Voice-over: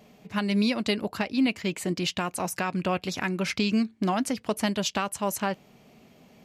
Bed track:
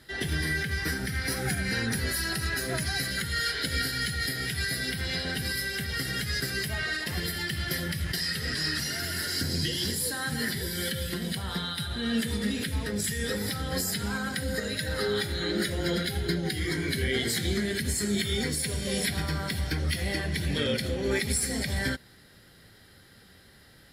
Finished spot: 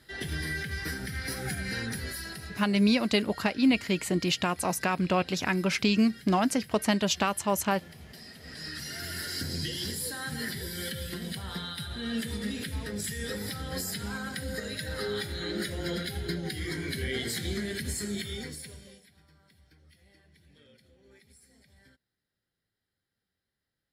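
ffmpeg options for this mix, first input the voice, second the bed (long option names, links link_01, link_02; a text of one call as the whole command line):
ffmpeg -i stem1.wav -i stem2.wav -filter_complex "[0:a]adelay=2250,volume=1dB[link_01];[1:a]volume=9.5dB,afade=type=out:start_time=1.8:duration=0.89:silence=0.199526,afade=type=in:start_time=8.39:duration=0.72:silence=0.199526,afade=type=out:start_time=17.93:duration=1.08:silence=0.0446684[link_02];[link_01][link_02]amix=inputs=2:normalize=0" out.wav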